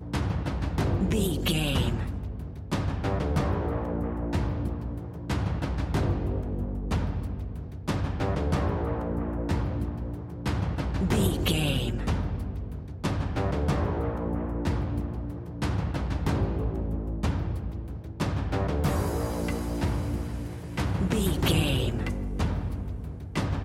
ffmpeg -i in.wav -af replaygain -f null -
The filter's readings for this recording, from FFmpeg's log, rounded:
track_gain = +11.0 dB
track_peak = 0.185